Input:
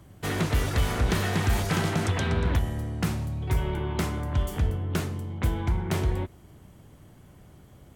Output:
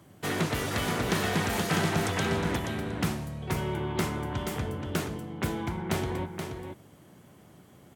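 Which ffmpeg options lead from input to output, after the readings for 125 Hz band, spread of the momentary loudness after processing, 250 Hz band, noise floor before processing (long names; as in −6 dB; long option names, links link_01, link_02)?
−6.0 dB, 9 LU, 0.0 dB, −52 dBFS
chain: -filter_complex "[0:a]highpass=150,asplit=2[link_01][link_02];[link_02]aecho=0:1:477:0.473[link_03];[link_01][link_03]amix=inputs=2:normalize=0"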